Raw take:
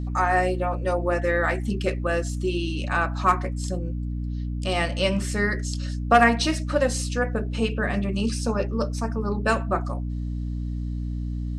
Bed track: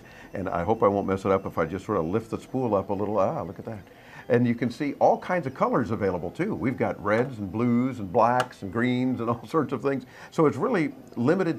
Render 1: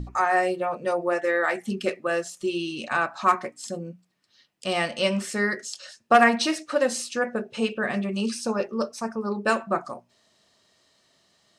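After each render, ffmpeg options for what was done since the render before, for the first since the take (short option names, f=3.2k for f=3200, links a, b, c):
-af "bandreject=f=60:t=h:w=6,bandreject=f=120:t=h:w=6,bandreject=f=180:t=h:w=6,bandreject=f=240:t=h:w=6,bandreject=f=300:t=h:w=6"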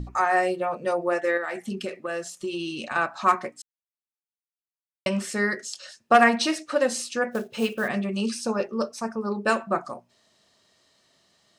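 -filter_complex "[0:a]asettb=1/sr,asplit=3[a][b][c];[a]atrim=end=1.374[d];[b]atrim=start=1.37:end=2.96,asetpts=PTS-STARTPTS,afade=t=in:d=0.004:c=qsin,afade=t=out:st=1.586:d=0.004:c=qsin,acompressor=threshold=-26dB:ratio=6:attack=3.2:release=140:knee=1:detection=peak[e];[c]atrim=start=2.956[f];[d][e]acrossfade=d=0.004:c1=hsin:c2=qsin[g];[g][f]acrossfade=d=0.004:c1=qsin:c2=hsin,asplit=3[h][i][j];[h]afade=t=out:st=7.31:d=0.02[k];[i]acrusher=bits=5:mode=log:mix=0:aa=0.000001,afade=t=in:st=7.31:d=0.02,afade=t=out:st=7.87:d=0.02[l];[j]afade=t=in:st=7.87:d=0.02[m];[k][l][m]amix=inputs=3:normalize=0,asplit=3[n][o][p];[n]atrim=end=3.62,asetpts=PTS-STARTPTS,afade=t=out:st=3.616:d=0.004:c=hsin[q];[o]atrim=start=3.62:end=5.06,asetpts=PTS-STARTPTS,volume=0[r];[p]atrim=start=5.06,asetpts=PTS-STARTPTS,afade=t=in:d=0.004:c=hsin[s];[q][r][s]concat=n=3:v=0:a=1"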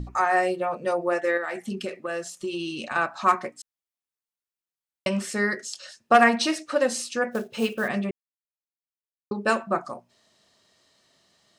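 -filter_complex "[0:a]asplit=3[a][b][c];[a]atrim=end=8.11,asetpts=PTS-STARTPTS,afade=t=out:st=8.106:d=0.004:c=hsin[d];[b]atrim=start=8.11:end=9.31,asetpts=PTS-STARTPTS,volume=0[e];[c]atrim=start=9.31,asetpts=PTS-STARTPTS,afade=t=in:d=0.004:c=hsin[f];[d][e][f]concat=n=3:v=0:a=1"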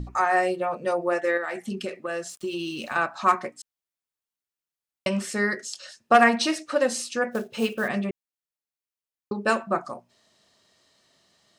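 -filter_complex "[0:a]asettb=1/sr,asplit=3[a][b][c];[a]atrim=end=2.294[d];[b]atrim=start=2.29:end=2.95,asetpts=PTS-STARTPTS,afade=t=in:d=0.004:c=qsin,afade=t=out:st=0.656:d=0.004:c=qsin,aeval=exprs='val(0)*gte(abs(val(0)),0.00398)':c=same[e];[c]atrim=start=2.946[f];[d][e]acrossfade=d=0.004:c1=hsin:c2=qsin[g];[g][f]acrossfade=d=0.004:c1=qsin:c2=hsin"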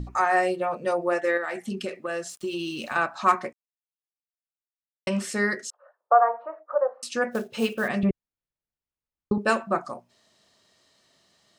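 -filter_complex "[0:a]asettb=1/sr,asplit=3[a][b][c];[a]atrim=end=5.704[d];[b]atrim=start=5.7:end=7.03,asetpts=PTS-STARTPTS,afade=t=in:d=0.004:c=qsin,afade=t=out:st=1.326:d=0.004:c=qsin,asuperpass=centerf=800:order=8:qfactor=1[e];[c]atrim=start=7.026[f];[d][e]acrossfade=d=0.004:c1=hsin:c2=qsin[g];[g][f]acrossfade=d=0.004:c1=qsin:c2=hsin,asettb=1/sr,asplit=3[h][i][j];[h]atrim=end=8.034[k];[i]atrim=start=8.03:end=9.38,asetpts=PTS-STARTPTS,afade=t=in:d=0.004:c=qsin,afade=t=out:st=1.346:d=0.004:c=qsin,aemphasis=mode=reproduction:type=riaa[l];[j]atrim=start=9.376[m];[k][l]acrossfade=d=0.004:c1=hsin:c2=qsin[n];[n][m]acrossfade=d=0.004:c1=qsin:c2=hsin,asplit=3[o][p][q];[o]atrim=end=3.53,asetpts=PTS-STARTPTS,afade=t=out:st=3.526:d=0.004:c=hsin[r];[p]atrim=start=3.53:end=5.07,asetpts=PTS-STARTPTS,volume=0[s];[q]atrim=start=5.07,asetpts=PTS-STARTPTS,afade=t=in:d=0.004:c=hsin[t];[r][s][t]concat=n=3:v=0:a=1"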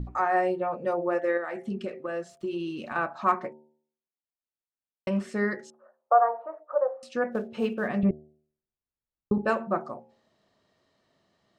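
-af "lowpass=f=1k:p=1,bandreject=f=75.76:t=h:w=4,bandreject=f=151.52:t=h:w=4,bandreject=f=227.28:t=h:w=4,bandreject=f=303.04:t=h:w=4,bandreject=f=378.8:t=h:w=4,bandreject=f=454.56:t=h:w=4,bandreject=f=530.32:t=h:w=4,bandreject=f=606.08:t=h:w=4,bandreject=f=681.84:t=h:w=4,bandreject=f=757.6:t=h:w=4,bandreject=f=833.36:t=h:w=4,bandreject=f=909.12:t=h:w=4"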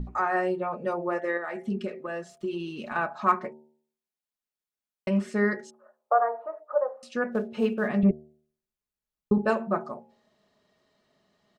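-af "aecho=1:1:4.8:0.41"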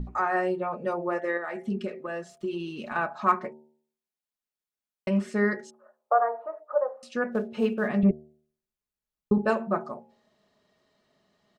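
-af anull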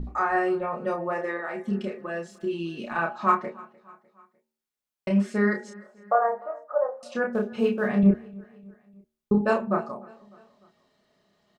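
-filter_complex "[0:a]asplit=2[a][b];[b]adelay=30,volume=-4dB[c];[a][c]amix=inputs=2:normalize=0,aecho=1:1:301|602|903:0.0708|0.0368|0.0191"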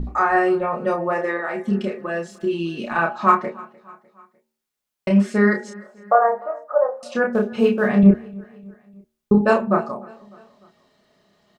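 -af "volume=6.5dB,alimiter=limit=-3dB:level=0:latency=1"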